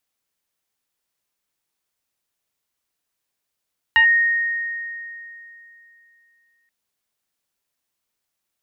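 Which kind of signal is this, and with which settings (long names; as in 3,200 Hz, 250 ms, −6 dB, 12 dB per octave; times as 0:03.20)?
two-operator FM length 2.73 s, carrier 1,860 Hz, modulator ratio 0.52, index 0.66, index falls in 0.10 s linear, decay 2.97 s, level −9.5 dB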